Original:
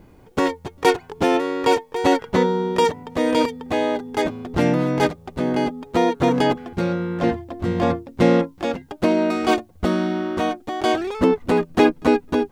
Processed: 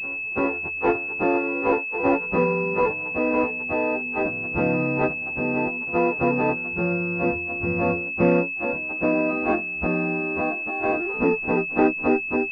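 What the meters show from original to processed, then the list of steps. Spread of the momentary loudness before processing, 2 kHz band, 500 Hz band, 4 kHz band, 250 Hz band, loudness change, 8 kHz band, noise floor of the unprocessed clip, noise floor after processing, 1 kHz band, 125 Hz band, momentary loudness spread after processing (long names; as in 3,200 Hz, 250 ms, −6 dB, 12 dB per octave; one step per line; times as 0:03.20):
6 LU, +5.0 dB, −3.0 dB, below −20 dB, −4.0 dB, −2.0 dB, below −25 dB, −49 dBFS, −30 dBFS, −4.5 dB, −3.5 dB, 4 LU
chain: every partial snapped to a pitch grid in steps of 2 semitones
backwards echo 338 ms −19 dB
switching amplifier with a slow clock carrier 2,600 Hz
level −2.5 dB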